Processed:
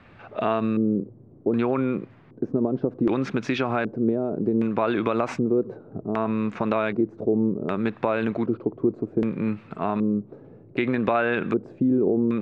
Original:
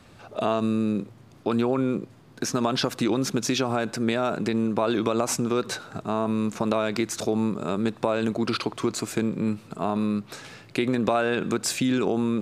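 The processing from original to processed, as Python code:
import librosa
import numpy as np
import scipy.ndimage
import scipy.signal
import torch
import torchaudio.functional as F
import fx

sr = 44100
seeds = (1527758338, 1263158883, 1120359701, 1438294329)

y = fx.high_shelf(x, sr, hz=3600.0, db=8.0, at=(4.06, 4.67))
y = fx.filter_lfo_lowpass(y, sr, shape='square', hz=0.65, low_hz=420.0, high_hz=2200.0, q=1.6)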